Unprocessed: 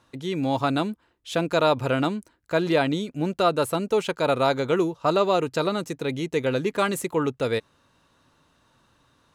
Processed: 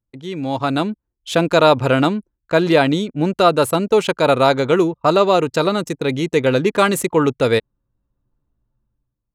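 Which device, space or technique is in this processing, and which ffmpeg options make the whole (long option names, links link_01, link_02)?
voice memo with heavy noise removal: -af "anlmdn=0.251,dynaudnorm=framelen=230:gausssize=7:maxgain=13.5dB"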